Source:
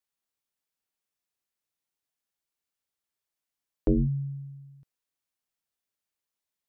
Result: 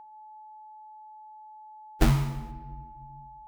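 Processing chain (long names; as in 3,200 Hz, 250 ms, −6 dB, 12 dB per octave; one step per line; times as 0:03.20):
phase-vocoder stretch with locked phases 0.52×
low-shelf EQ 81 Hz +9.5 dB
sample-rate reduction 1,100 Hz, jitter 20%
steady tone 860 Hz −44 dBFS
rectangular room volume 1,400 cubic metres, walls mixed, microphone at 0.55 metres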